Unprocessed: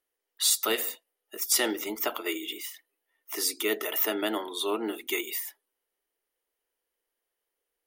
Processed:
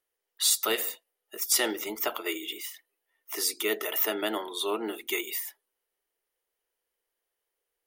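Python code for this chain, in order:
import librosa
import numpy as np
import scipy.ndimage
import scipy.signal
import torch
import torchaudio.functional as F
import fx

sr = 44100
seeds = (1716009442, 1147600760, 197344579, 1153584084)

y = fx.peak_eq(x, sr, hz=270.0, db=-7.5, octaves=0.33)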